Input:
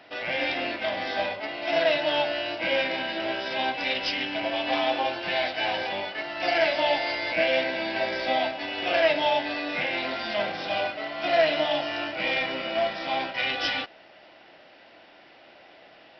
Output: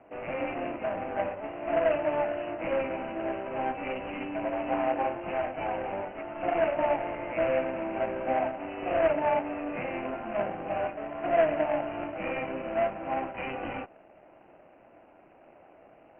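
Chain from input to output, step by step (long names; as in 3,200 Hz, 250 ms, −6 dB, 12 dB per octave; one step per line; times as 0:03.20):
running median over 25 samples
Butterworth low-pass 2,800 Hz 96 dB per octave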